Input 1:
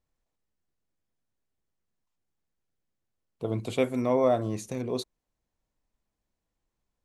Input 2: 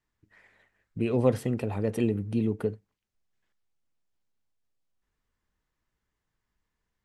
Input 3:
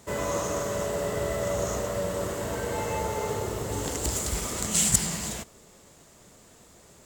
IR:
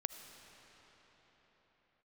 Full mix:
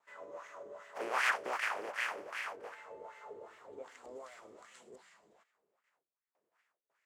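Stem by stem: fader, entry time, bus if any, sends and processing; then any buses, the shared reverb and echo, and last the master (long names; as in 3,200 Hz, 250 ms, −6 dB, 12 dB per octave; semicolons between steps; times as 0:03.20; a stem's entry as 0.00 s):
−17.0 dB, 0.00 s, no send, no processing
−5.0 dB, 0.00 s, send −19 dB, compressing power law on the bin magnitudes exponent 0.14; mid-hump overdrive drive 23 dB, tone 4,000 Hz, clips at −4.5 dBFS; parametric band 3,800 Hz −11 dB 0.48 octaves; automatic ducking −24 dB, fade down 1.85 s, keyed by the first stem
0:04.60 −12.5 dB → 0:04.83 −19.5 dB, 0.00 s, send −13 dB, no processing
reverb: on, pre-delay 35 ms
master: noise gate with hold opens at −58 dBFS; low-shelf EQ 340 Hz −11 dB; LFO wah 2.6 Hz 370–2,000 Hz, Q 2.4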